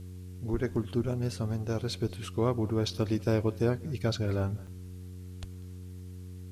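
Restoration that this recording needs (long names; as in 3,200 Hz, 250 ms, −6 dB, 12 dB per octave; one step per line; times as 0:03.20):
hum removal 91.2 Hz, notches 5
repair the gap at 0:04.67, 5.7 ms
downward expander −35 dBFS, range −21 dB
echo removal 194 ms −23.5 dB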